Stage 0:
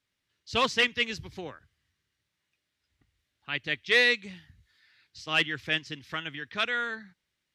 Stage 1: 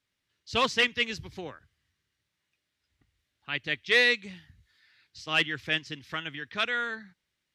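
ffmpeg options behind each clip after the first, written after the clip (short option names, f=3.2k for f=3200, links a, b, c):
-af anull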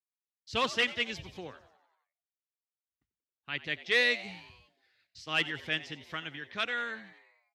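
-filter_complex "[0:a]agate=range=-33dB:threshold=-58dB:ratio=3:detection=peak,asplit=7[a][b][c][d][e][f][g];[b]adelay=90,afreqshift=100,volume=-17dB[h];[c]adelay=180,afreqshift=200,volume=-21.3dB[i];[d]adelay=270,afreqshift=300,volume=-25.6dB[j];[e]adelay=360,afreqshift=400,volume=-29.9dB[k];[f]adelay=450,afreqshift=500,volume=-34.2dB[l];[g]adelay=540,afreqshift=600,volume=-38.5dB[m];[a][h][i][j][k][l][m]amix=inputs=7:normalize=0,volume=-4dB"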